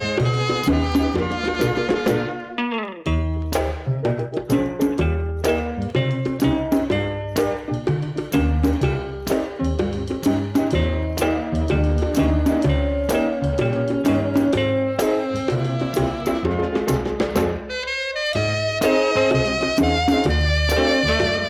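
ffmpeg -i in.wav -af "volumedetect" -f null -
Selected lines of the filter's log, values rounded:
mean_volume: -20.4 dB
max_volume: -10.4 dB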